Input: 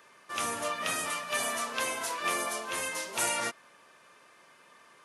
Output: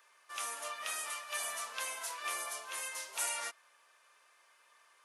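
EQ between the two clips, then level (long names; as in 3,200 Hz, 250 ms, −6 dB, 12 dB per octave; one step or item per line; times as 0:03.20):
high-pass filter 690 Hz 12 dB per octave
high-shelf EQ 5,400 Hz +5 dB
−8.0 dB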